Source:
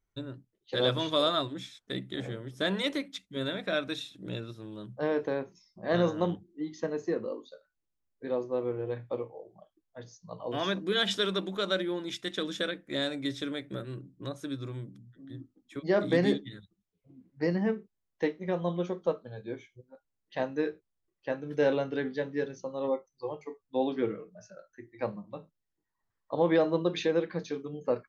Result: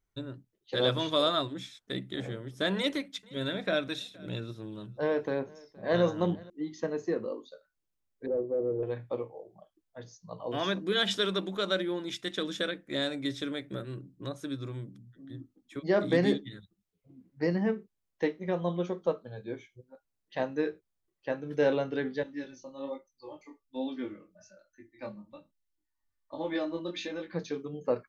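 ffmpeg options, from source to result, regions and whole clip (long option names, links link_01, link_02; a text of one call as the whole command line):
ffmpeg -i in.wav -filter_complex "[0:a]asettb=1/sr,asplit=3[link_01][link_02][link_03];[link_01]atrim=end=2.764[link_04];[link_02]atrim=start=2.76:end=6.5,asetpts=PTS-STARTPTS,afade=type=in:duration=0.004:curve=qsin,afade=type=out:start_time=3.736:duration=0.004:curve=qsin,bandreject=frequency=1200:width=25,aphaser=in_gain=1:out_gain=1:delay=2:decay=0.24:speed=1.1:type=sinusoidal,aecho=1:1:469:0.0631,atrim=end_sample=164934[link_05];[link_03]atrim=start=6.496[link_06];[link_04][link_05]acrossfade=duration=0.004:curve1=hsin:curve2=qsin[link_07];[link_07][link_06]acrossfade=duration=0.004:curve1=qsin:curve2=hsin,asettb=1/sr,asplit=3[link_08][link_09][link_10];[link_08]atrim=end=8.264[link_11];[link_09]atrim=start=8.26:end=8.83,asetpts=PTS-STARTPTS,afade=type=in:duration=0.004:curve=qsin,afade=type=out:start_time=0.566:duration=0.004:curve=qsin,asoftclip=type=hard:threshold=-30.5dB,lowpass=frequency=490:width_type=q:width=1.8[link_12];[link_10]atrim=start=8.826[link_13];[link_11][link_12]acrossfade=duration=0.004:curve1=hsin:curve2=qsin[link_14];[link_14][link_13]acrossfade=duration=0.004:curve1=qsin:curve2=hsin,asettb=1/sr,asplit=3[link_15][link_16][link_17];[link_15]atrim=end=22.234[link_18];[link_16]atrim=start=22.23:end=27.33,asetpts=PTS-STARTPTS,afade=type=in:duration=0.004:curve=qsin,afade=type=out:start_time=5.096:duration=0.004:curve=qsin,aecho=1:1:3.4:0.72,atrim=end_sample=224910,flanger=delay=19:depth=5:speed=1.2,equalizer=frequency=580:width_type=o:width=2.9:gain=-8[link_19];[link_17]atrim=start=27.326[link_20];[link_18][link_19]acrossfade=duration=0.004:curve1=hsin:curve2=qsin[link_21];[link_21][link_20]acrossfade=duration=0.004:curve1=qsin:curve2=hsin" out.wav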